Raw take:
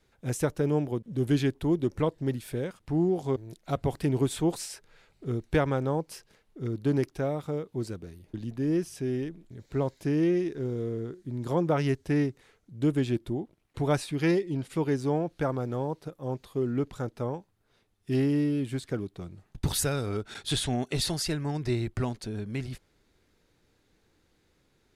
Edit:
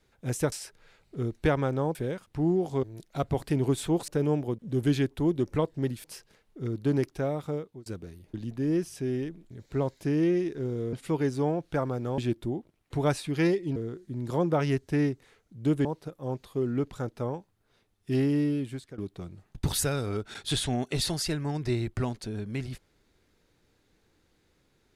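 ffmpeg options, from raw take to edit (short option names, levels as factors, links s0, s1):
-filter_complex "[0:a]asplit=11[s0][s1][s2][s3][s4][s5][s6][s7][s8][s9][s10];[s0]atrim=end=0.522[s11];[s1]atrim=start=4.608:end=6.042[s12];[s2]atrim=start=2.478:end=4.612[s13];[s3]atrim=start=0.518:end=2.482[s14];[s4]atrim=start=6.038:end=7.86,asetpts=PTS-STARTPTS,afade=t=out:st=1.502:d=0.32[s15];[s5]atrim=start=7.86:end=10.932,asetpts=PTS-STARTPTS,afade=t=in:d=0.004:c=hsin[s16];[s6]atrim=start=14.598:end=15.852[s17];[s7]atrim=start=13.018:end=14.602[s18];[s8]atrim=start=10.928:end=13.022[s19];[s9]atrim=start=15.848:end=18.98,asetpts=PTS-STARTPTS,afade=t=out:st=2.662:d=0.47:silence=0.149624[s20];[s10]atrim=start=18.98,asetpts=PTS-STARTPTS,afade=t=in:d=0.004:c=hsin:silence=0.149624[s21];[s11][s12]acrossfade=d=0.004:c1=hsin:c2=hsin[s22];[s22][s13]acrossfade=d=0.004:c1=hsin:c2=hsin[s23];[s23][s14]acrossfade=d=0.004:c1=hsin:c2=hsin[s24];[s15][s16]concat=n=2:v=0:a=1[s25];[s24][s25]acrossfade=d=0.004:c1=hsin:c2=hsin[s26];[s26][s17]acrossfade=d=0.004:c1=hsin:c2=hsin[s27];[s27][s18]acrossfade=d=0.004:c1=hsin:c2=hsin[s28];[s28][s19]acrossfade=d=0.004:c1=hsin:c2=hsin[s29];[s20][s21]concat=n=2:v=0:a=1[s30];[s29][s30]acrossfade=d=0.004:c1=hsin:c2=hsin"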